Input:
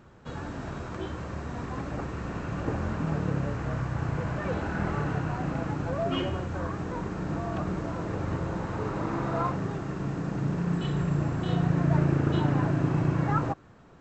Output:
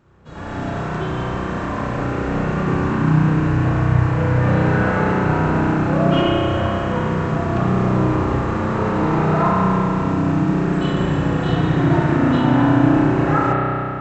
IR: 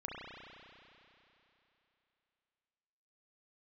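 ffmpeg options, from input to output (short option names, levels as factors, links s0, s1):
-filter_complex "[1:a]atrim=start_sample=2205[s0];[0:a][s0]afir=irnorm=-1:irlink=0,dynaudnorm=f=280:g=3:m=3.98,asettb=1/sr,asplit=3[s1][s2][s3];[s1]atrim=end=2.624[s4];[s2]atrim=start=2.62:end=3.65,asetpts=PTS-STARTPTS,afade=t=in:d=0.004:c=qsin,afade=t=out:st=1.026:d=0.004:c=qsin,equalizer=f=580:w=2.7:g=-6.5[s5];[s3]atrim=start=3.646[s6];[s4][s5]acrossfade=d=0.004:c1=hsin:c2=qsin[s7];[s7][s6]acrossfade=d=0.004:c1=qsin:c2=hsin"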